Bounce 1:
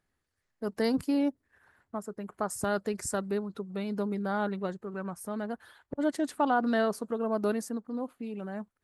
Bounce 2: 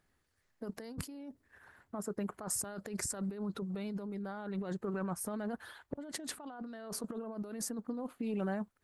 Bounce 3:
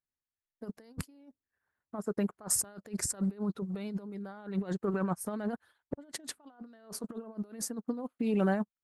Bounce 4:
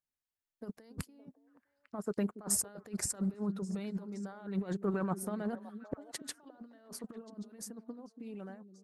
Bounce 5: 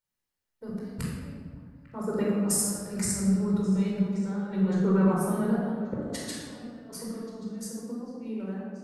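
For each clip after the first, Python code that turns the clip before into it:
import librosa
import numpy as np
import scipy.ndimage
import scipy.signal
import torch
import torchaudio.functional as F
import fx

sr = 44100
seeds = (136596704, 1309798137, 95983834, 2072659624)

y1 = fx.over_compress(x, sr, threshold_db=-38.0, ratio=-1.0)
y1 = y1 * 10.0 ** (-2.0 / 20.0)
y2 = fx.upward_expand(y1, sr, threshold_db=-56.0, expansion=2.5)
y2 = y2 * 10.0 ** (8.5 / 20.0)
y3 = fx.fade_out_tail(y2, sr, length_s=2.52)
y3 = fx.echo_stepped(y3, sr, ms=283, hz=260.0, octaves=1.4, feedback_pct=70, wet_db=-9.0)
y3 = y3 * 10.0 ** (-2.0 / 20.0)
y4 = fx.room_shoebox(y3, sr, seeds[0], volume_m3=1600.0, walls='mixed', distance_m=4.6)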